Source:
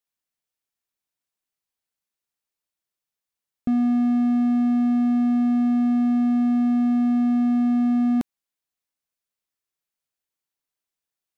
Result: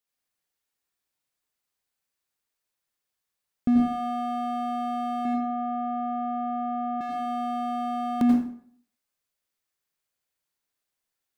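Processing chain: 5.25–7.01 LPF 1600 Hz 12 dB/oct; plate-style reverb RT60 0.58 s, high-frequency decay 0.75×, pre-delay 75 ms, DRR -2 dB

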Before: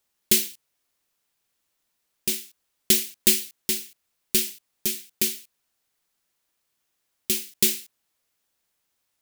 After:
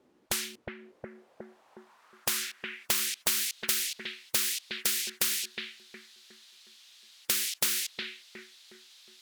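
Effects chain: analogue delay 0.363 s, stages 4096, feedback 39%, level -12 dB; band-pass sweep 300 Hz -> 3800 Hz, 0.62–3.37; spectral compressor 10:1; gain +2.5 dB

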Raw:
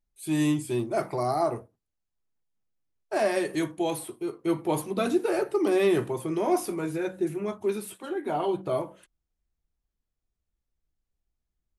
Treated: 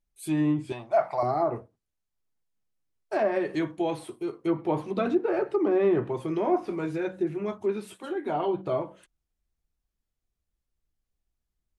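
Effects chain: treble ducked by the level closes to 1500 Hz, closed at -20.5 dBFS; 0.72–1.23 resonant low shelf 500 Hz -10.5 dB, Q 3

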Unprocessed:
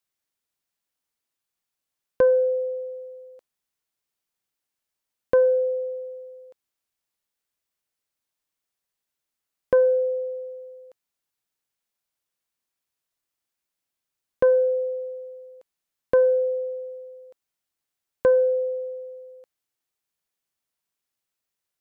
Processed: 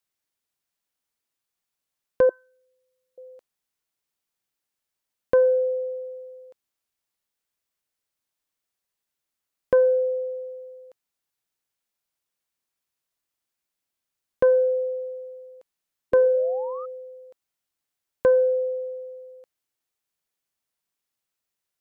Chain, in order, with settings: 2.29–3.18 elliptic band-stop 370–900 Hz; 16.12–16.86 painted sound rise 370–1300 Hz -39 dBFS

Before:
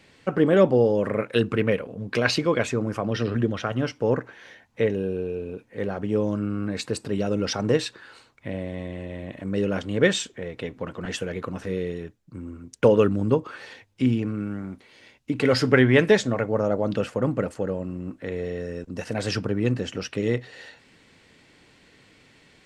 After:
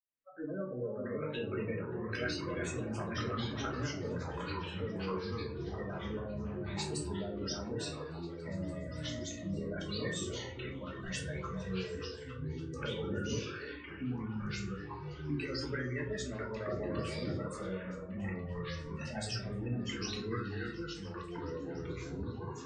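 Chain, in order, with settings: opening faded in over 1.13 s; pre-emphasis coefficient 0.8; low-pass opened by the level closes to 2100 Hz, open at -34 dBFS; spectral noise reduction 21 dB; spectral gate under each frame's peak -15 dB strong; dynamic EQ 1500 Hz, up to +6 dB, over -53 dBFS, Q 1.8; compressor 5:1, threshold -42 dBFS, peak gain reduction 16.5 dB; on a send: delay with a stepping band-pass 0.288 s, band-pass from 530 Hz, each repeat 0.7 oct, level -5 dB; on the sum: shoebox room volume 300 m³, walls furnished, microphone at 2.8 m; echoes that change speed 0.495 s, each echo -4 st, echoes 2

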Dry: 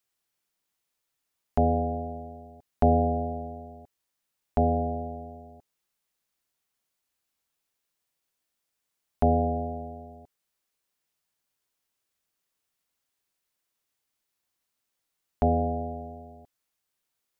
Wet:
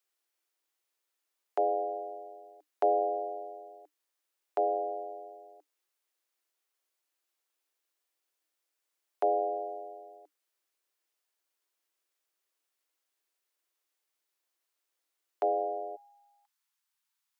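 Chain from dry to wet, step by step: Chebyshev high-pass 300 Hz, order 8, from 15.95 s 830 Hz; gain -1.5 dB

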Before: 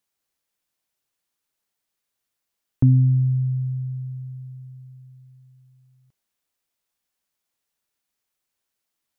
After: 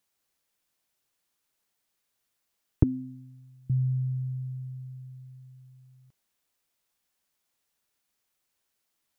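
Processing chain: 2.83–3.7 HPF 320 Hz 24 dB/oct; gain +2 dB

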